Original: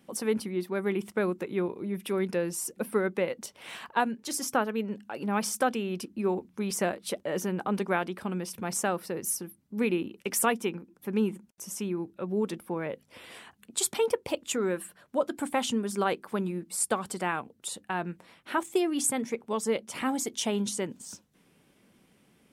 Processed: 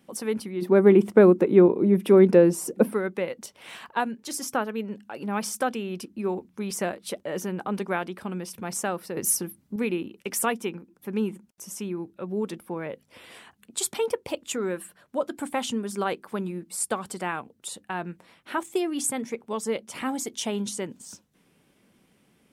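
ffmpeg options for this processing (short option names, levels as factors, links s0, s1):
-filter_complex "[0:a]asplit=3[s0][s1][s2];[s0]afade=t=out:st=0.61:d=0.02[s3];[s1]equalizer=f=330:w=0.31:g=14.5,afade=t=in:st=0.61:d=0.02,afade=t=out:st=2.92:d=0.02[s4];[s2]afade=t=in:st=2.92:d=0.02[s5];[s3][s4][s5]amix=inputs=3:normalize=0,asplit=3[s6][s7][s8];[s6]atrim=end=9.172[s9];[s7]atrim=start=9.168:end=9.762,asetpts=PTS-STARTPTS,volume=2.24[s10];[s8]atrim=start=9.758[s11];[s9][s10]acrossfade=d=0.004:c1=hsin:c2=hsin[s12];[s12][s11]acrossfade=d=0.004:c1=hsin:c2=hsin"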